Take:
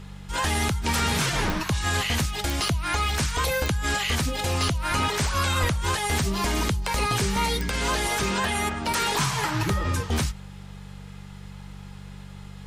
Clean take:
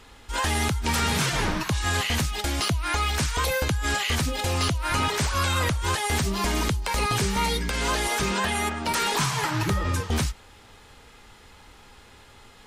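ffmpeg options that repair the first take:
-filter_complex "[0:a]adeclick=t=4,bandreject=f=48.1:t=h:w=4,bandreject=f=96.2:t=h:w=4,bandreject=f=144.3:t=h:w=4,bandreject=f=192.4:t=h:w=4,asplit=3[s0][s1][s2];[s0]afade=t=out:st=5.6:d=0.02[s3];[s1]highpass=f=140:w=0.5412,highpass=f=140:w=1.3066,afade=t=in:st=5.6:d=0.02,afade=t=out:st=5.72:d=0.02[s4];[s2]afade=t=in:st=5.72:d=0.02[s5];[s3][s4][s5]amix=inputs=3:normalize=0"

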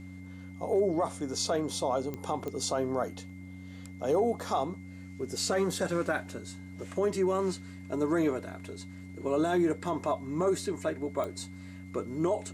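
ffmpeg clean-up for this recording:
-af "adeclick=t=4,bandreject=f=92.5:t=h:w=4,bandreject=f=185:t=h:w=4,bandreject=f=277.5:t=h:w=4,bandreject=f=2100:w=30"

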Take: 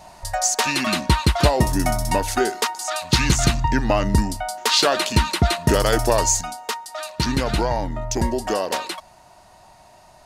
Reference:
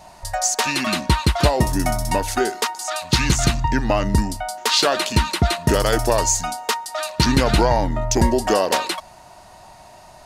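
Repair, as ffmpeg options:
-af "asetnsamples=n=441:p=0,asendcmd='6.41 volume volume 5dB',volume=1"

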